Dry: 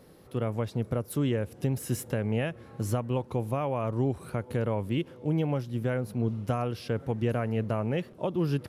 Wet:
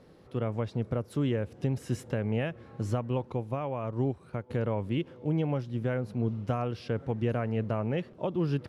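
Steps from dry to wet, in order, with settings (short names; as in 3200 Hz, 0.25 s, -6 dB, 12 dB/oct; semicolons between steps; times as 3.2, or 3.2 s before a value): air absorption 75 m; 3.32–4.5 upward expander 1.5:1, over -41 dBFS; gain -1 dB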